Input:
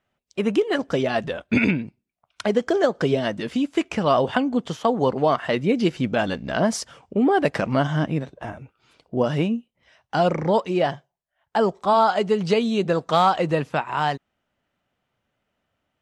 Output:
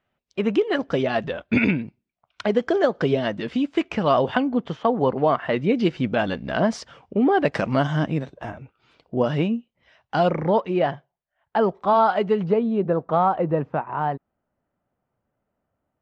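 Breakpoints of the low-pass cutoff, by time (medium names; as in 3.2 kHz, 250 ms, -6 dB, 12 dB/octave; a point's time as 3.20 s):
4.1 kHz
from 4.47 s 2.6 kHz
from 5.56 s 4 kHz
from 7.52 s 7.1 kHz
from 8.52 s 4.3 kHz
from 10.30 s 2.6 kHz
from 12.44 s 1.1 kHz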